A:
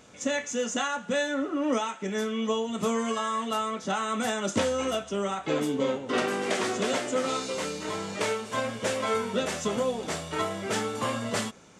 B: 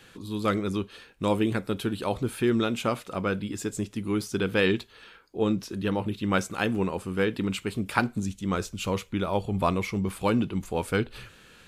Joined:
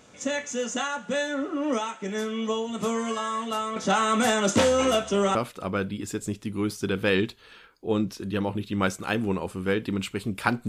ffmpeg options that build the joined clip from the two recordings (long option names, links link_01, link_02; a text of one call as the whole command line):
ffmpeg -i cue0.wav -i cue1.wav -filter_complex "[0:a]asettb=1/sr,asplit=3[link_01][link_02][link_03];[link_01]atrim=end=3.764[link_04];[link_02]atrim=start=3.76:end=5.35,asetpts=PTS-STARTPTS,afade=type=in:duration=0.004:curve=qsin,afade=type=out:start_time=1.586:duration=0.004:curve=qsin,aeval=exprs='0.224*sin(PI/2*1.41*val(0)/0.224)':channel_layout=same[link_05];[link_03]atrim=start=5.346[link_06];[link_04][link_05]acrossfade=duration=0.004:curve1=hsin:curve2=qsin[link_07];[link_07][link_06]acrossfade=duration=0.004:curve1=qsin:curve2=hsin,apad=whole_dur=10.68,atrim=end=10.68,atrim=end=5.352[link_08];[1:a]atrim=start=2.858:end=8.19[link_09];[link_08][link_09]acrossfade=duration=0.004:curve1=hsin:curve2=hsin" out.wav